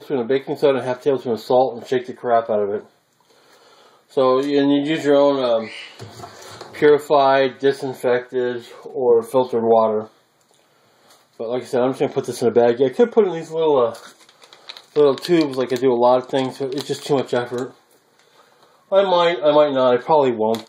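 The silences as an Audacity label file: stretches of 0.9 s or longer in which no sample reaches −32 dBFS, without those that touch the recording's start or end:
2.810000	4.170000	silence
10.050000	11.400000	silence
17.700000	18.920000	silence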